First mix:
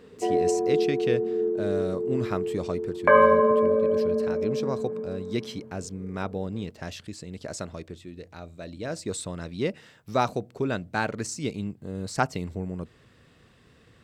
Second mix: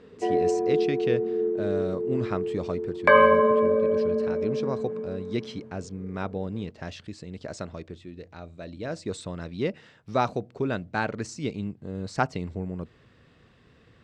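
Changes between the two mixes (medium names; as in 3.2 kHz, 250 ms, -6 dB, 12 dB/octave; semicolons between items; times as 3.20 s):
background: remove low-pass 1.6 kHz 12 dB/octave; master: add distance through air 90 m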